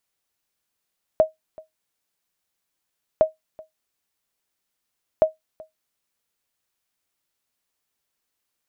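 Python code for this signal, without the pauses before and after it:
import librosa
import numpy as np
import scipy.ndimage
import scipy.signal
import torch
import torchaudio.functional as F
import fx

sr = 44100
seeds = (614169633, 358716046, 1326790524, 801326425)

y = fx.sonar_ping(sr, hz=631.0, decay_s=0.15, every_s=2.01, pings=3, echo_s=0.38, echo_db=-24.5, level_db=-7.0)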